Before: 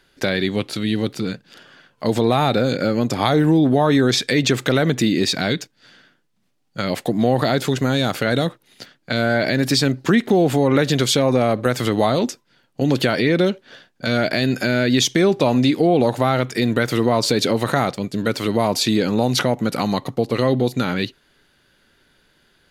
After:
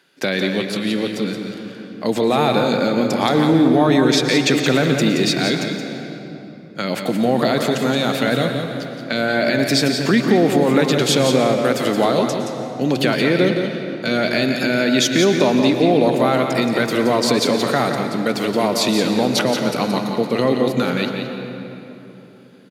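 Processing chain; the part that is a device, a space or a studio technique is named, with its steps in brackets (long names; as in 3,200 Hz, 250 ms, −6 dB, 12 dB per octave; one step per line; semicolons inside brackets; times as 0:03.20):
PA in a hall (high-pass filter 150 Hz 24 dB per octave; parametric band 2,500 Hz +3.5 dB 0.22 octaves; single-tap delay 174 ms −7 dB; convolution reverb RT60 3.4 s, pre-delay 102 ms, DRR 6.5 dB)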